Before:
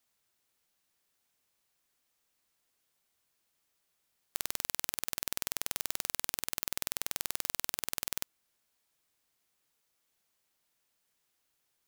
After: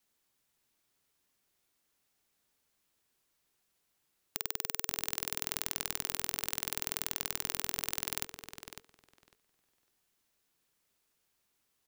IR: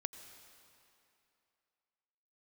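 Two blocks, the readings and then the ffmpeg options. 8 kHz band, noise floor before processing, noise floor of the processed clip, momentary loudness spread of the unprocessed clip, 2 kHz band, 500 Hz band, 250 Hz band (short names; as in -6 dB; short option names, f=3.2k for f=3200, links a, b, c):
0.0 dB, -79 dBFS, -79 dBFS, 3 LU, +0.5 dB, +2.0 dB, +4.0 dB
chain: -filter_complex "[0:a]asplit=2[a][b];[b]adelay=552,lowpass=f=4.5k:p=1,volume=-7dB,asplit=2[c][d];[d]adelay=552,lowpass=f=4.5k:p=1,volume=0.16,asplit=2[e][f];[f]adelay=552,lowpass=f=4.5k:p=1,volume=0.16[g];[a][c][e][g]amix=inputs=4:normalize=0,afreqshift=-460"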